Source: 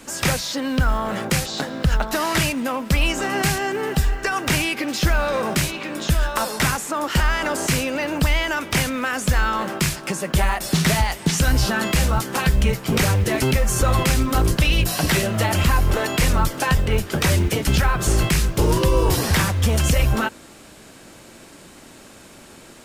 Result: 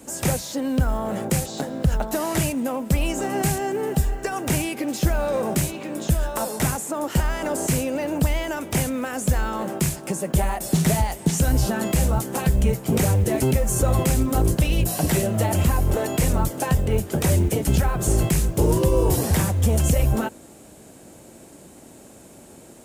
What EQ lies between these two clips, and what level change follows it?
high-pass filter 46 Hz
flat-topped bell 2,400 Hz −9.5 dB 2.7 octaves
0.0 dB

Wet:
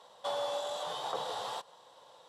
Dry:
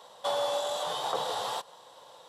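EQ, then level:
high-shelf EQ 12,000 Hz −10.5 dB
−5.0 dB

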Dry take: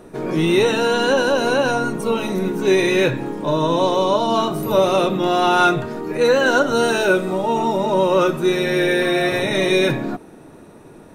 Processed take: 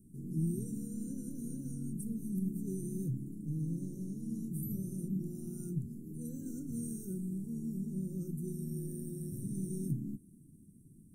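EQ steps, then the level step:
inverse Chebyshev band-stop filter 600–3,700 Hz, stop band 60 dB
low-shelf EQ 320 Hz −11 dB
high-shelf EQ 8,500 Hz −11.5 dB
0.0 dB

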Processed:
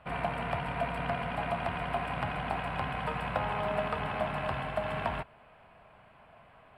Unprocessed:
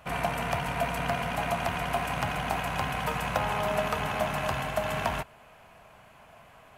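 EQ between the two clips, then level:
moving average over 7 samples
−3.0 dB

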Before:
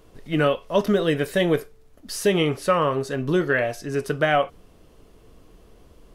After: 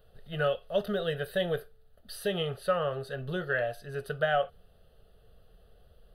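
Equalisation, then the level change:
Butterworth band-reject 5,400 Hz, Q 5.7
phaser with its sweep stopped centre 1,500 Hz, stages 8
−6.0 dB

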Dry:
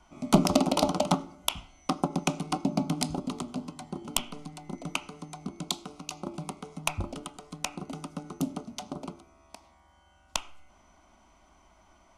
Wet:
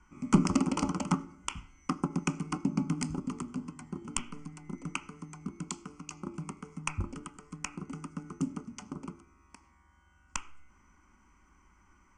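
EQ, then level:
Butterworth low-pass 9,000 Hz 72 dB per octave
phaser with its sweep stopped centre 1,600 Hz, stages 4
0.0 dB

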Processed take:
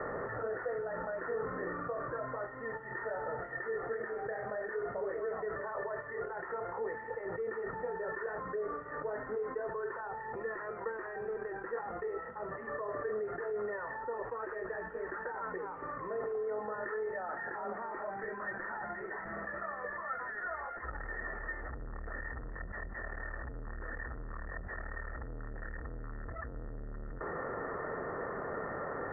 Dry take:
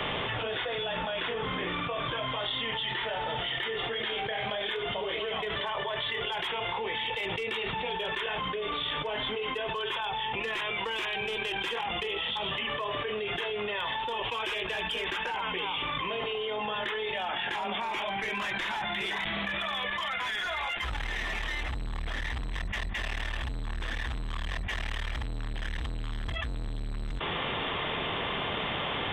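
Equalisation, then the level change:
Chebyshev low-pass with heavy ripple 1,900 Hz, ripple 9 dB
mains-hum notches 50/100/150/200 Hz
0.0 dB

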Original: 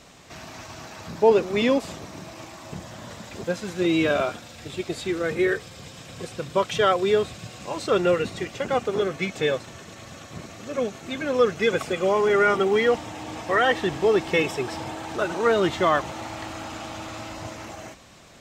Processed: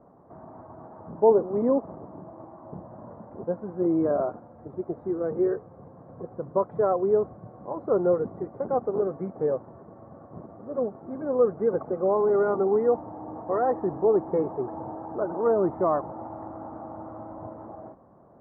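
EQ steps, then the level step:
high-pass filter 190 Hz 6 dB per octave
inverse Chebyshev low-pass filter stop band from 2,600 Hz, stop band 50 dB
high-frequency loss of the air 230 metres
0.0 dB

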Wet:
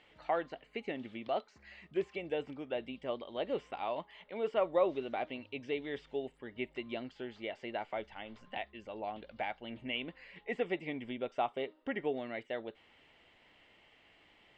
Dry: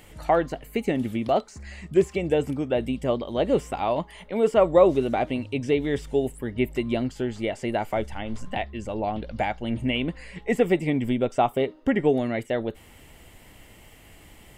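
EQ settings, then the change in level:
transistor ladder low-pass 4,500 Hz, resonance 25%
low-shelf EQ 120 Hz −8 dB
low-shelf EQ 240 Hz −11 dB
−4.5 dB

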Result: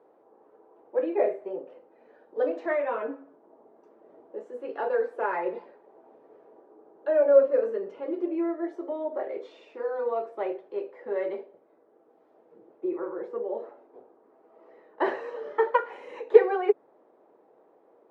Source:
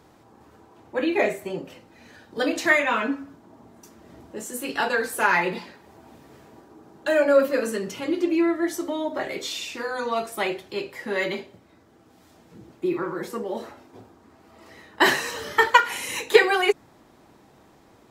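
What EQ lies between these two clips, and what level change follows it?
four-pole ladder band-pass 550 Hz, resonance 50%
+6.5 dB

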